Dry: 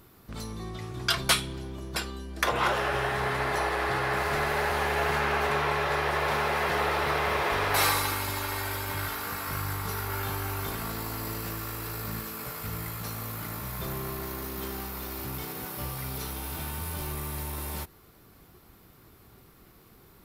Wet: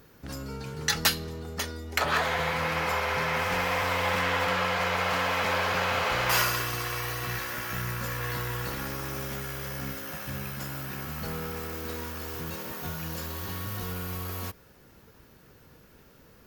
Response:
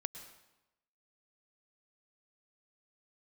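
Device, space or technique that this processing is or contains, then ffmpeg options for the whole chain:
nightcore: -af "asetrate=54243,aresample=44100"

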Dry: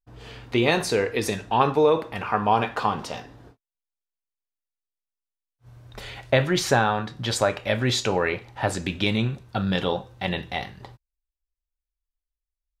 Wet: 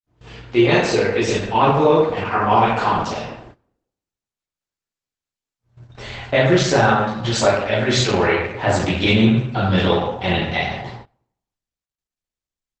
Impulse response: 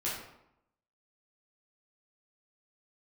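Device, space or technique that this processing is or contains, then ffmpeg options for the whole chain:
speakerphone in a meeting room: -filter_complex "[1:a]atrim=start_sample=2205[link_01];[0:a][link_01]afir=irnorm=-1:irlink=0,asplit=2[link_02][link_03];[link_03]adelay=150,highpass=300,lowpass=3400,asoftclip=type=hard:threshold=-12.5dB,volume=-16dB[link_04];[link_02][link_04]amix=inputs=2:normalize=0,dynaudnorm=framelen=460:gausssize=3:maxgain=5dB,agate=range=-19dB:threshold=-37dB:ratio=16:detection=peak" -ar 48000 -c:a libopus -b:a 12k

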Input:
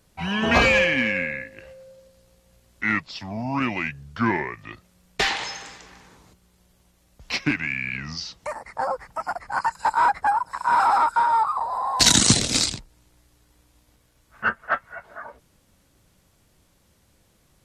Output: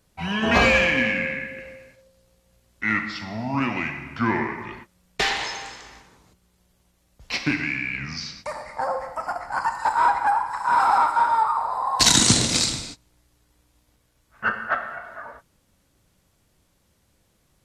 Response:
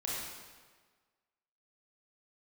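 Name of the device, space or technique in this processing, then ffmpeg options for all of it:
keyed gated reverb: -filter_complex "[0:a]asplit=3[link_01][link_02][link_03];[1:a]atrim=start_sample=2205[link_04];[link_02][link_04]afir=irnorm=-1:irlink=0[link_05];[link_03]apad=whole_len=778068[link_06];[link_05][link_06]sidechaingate=range=-33dB:threshold=-48dB:ratio=16:detection=peak,volume=-5.5dB[link_07];[link_01][link_07]amix=inputs=2:normalize=0,volume=-3.5dB"

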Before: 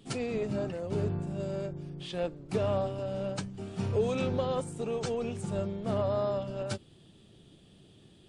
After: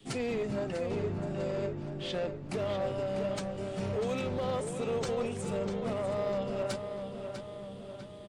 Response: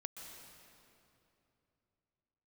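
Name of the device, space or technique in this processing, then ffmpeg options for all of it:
limiter into clipper: -filter_complex "[0:a]alimiter=level_in=2.5dB:limit=-24dB:level=0:latency=1:release=82,volume=-2.5dB,asoftclip=type=hard:threshold=-30dB,asettb=1/sr,asplit=3[link_01][link_02][link_03];[link_01]atrim=end=0.914[link_04];[link_02]atrim=start=0.91:end=2.43,asetpts=PTS-STARTPTS,afade=type=in:duration=0.004:curve=qsin,afade=type=out:start_time=1.516:duration=0.004:curve=qsin,lowpass=7300[link_05];[link_03]atrim=start=2.426[link_06];[link_04][link_05]acrossfade=duration=0.004:curve1=hsin:curve2=qsin[link_07];[link_07][link_06]acrossfade=duration=0.004:curve1=qsin:curve2=hsin,equalizer=frequency=2000:width=5.5:gain=4.5,asplit=2[link_08][link_09];[link_09]adelay=647,lowpass=frequency=4800:poles=1,volume=-7dB,asplit=2[link_10][link_11];[link_11]adelay=647,lowpass=frequency=4800:poles=1,volume=0.54,asplit=2[link_12][link_13];[link_13]adelay=647,lowpass=frequency=4800:poles=1,volume=0.54,asplit=2[link_14][link_15];[link_15]adelay=647,lowpass=frequency=4800:poles=1,volume=0.54,asplit=2[link_16][link_17];[link_17]adelay=647,lowpass=frequency=4800:poles=1,volume=0.54,asplit=2[link_18][link_19];[link_19]adelay=647,lowpass=frequency=4800:poles=1,volume=0.54,asplit=2[link_20][link_21];[link_21]adelay=647,lowpass=frequency=4800:poles=1,volume=0.54[link_22];[link_08][link_10][link_12][link_14][link_16][link_18][link_20][link_22]amix=inputs=8:normalize=0,adynamicequalizer=threshold=0.00316:dfrequency=120:dqfactor=0.81:tfrequency=120:tqfactor=0.81:attack=5:release=100:ratio=0.375:range=2.5:mode=cutabove:tftype=bell,volume=3dB"

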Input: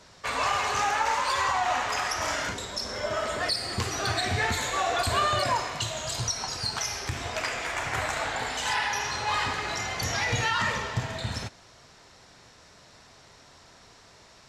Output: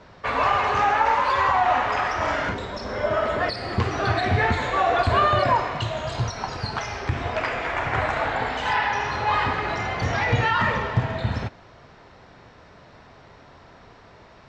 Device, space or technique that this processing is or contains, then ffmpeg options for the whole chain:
phone in a pocket: -af "lowpass=3400,highshelf=frequency=2200:gain=-9,volume=8dB"

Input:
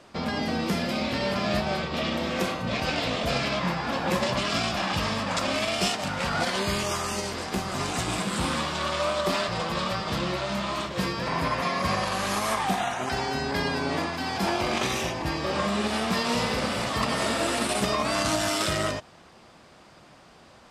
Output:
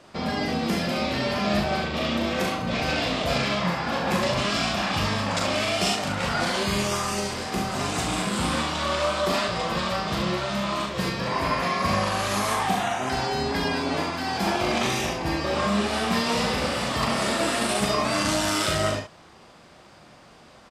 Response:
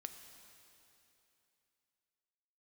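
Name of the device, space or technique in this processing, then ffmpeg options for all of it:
slapback doubling: -filter_complex "[0:a]asplit=3[link_01][link_02][link_03];[link_02]adelay=39,volume=-4.5dB[link_04];[link_03]adelay=69,volume=-7dB[link_05];[link_01][link_04][link_05]amix=inputs=3:normalize=0"

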